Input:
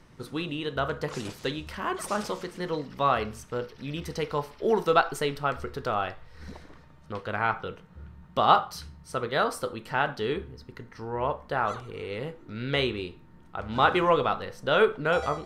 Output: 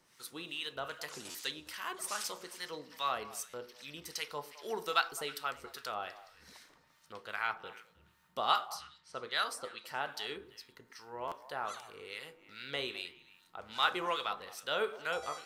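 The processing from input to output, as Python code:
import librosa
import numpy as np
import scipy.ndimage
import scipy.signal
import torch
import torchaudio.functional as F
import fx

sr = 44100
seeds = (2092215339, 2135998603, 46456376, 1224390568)

y = fx.harmonic_tremolo(x, sr, hz=2.5, depth_pct=70, crossover_hz=980.0)
y = fx.env_lowpass(y, sr, base_hz=2800.0, full_db=-24.5, at=(8.56, 9.85), fade=0.02)
y = fx.tilt_eq(y, sr, slope=4.5)
y = fx.echo_stepped(y, sr, ms=105, hz=300.0, octaves=1.4, feedback_pct=70, wet_db=-11)
y = fx.buffer_glitch(y, sr, at_s=(1.3, 3.49, 11.27), block=512, repeats=3)
y = y * librosa.db_to_amplitude(-7.0)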